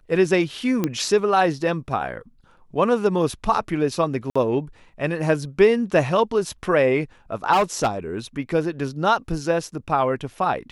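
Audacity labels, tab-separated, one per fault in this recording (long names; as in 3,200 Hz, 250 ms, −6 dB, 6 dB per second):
0.840000	0.840000	click −9 dBFS
4.300000	4.360000	drop-out 55 ms
7.520000	7.880000	clipping −14 dBFS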